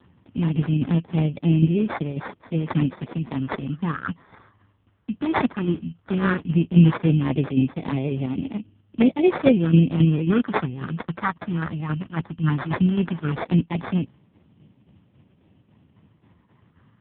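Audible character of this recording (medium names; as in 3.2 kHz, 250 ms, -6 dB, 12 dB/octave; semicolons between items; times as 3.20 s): tremolo saw down 3.7 Hz, depth 60%; phasing stages 4, 0.15 Hz, lowest notch 470–1400 Hz; aliases and images of a low sample rate 2.9 kHz, jitter 0%; AMR-NB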